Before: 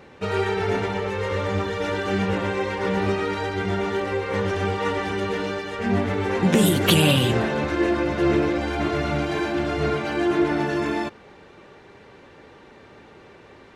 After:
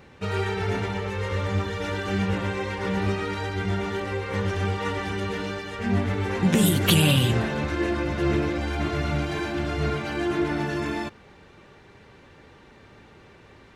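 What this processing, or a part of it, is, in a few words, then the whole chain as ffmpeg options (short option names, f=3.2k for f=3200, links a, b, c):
smiley-face EQ: -af "lowshelf=f=190:g=6,equalizer=f=450:t=o:w=2.3:g=-4.5,highshelf=f=9.9k:g=4.5,volume=-2dB"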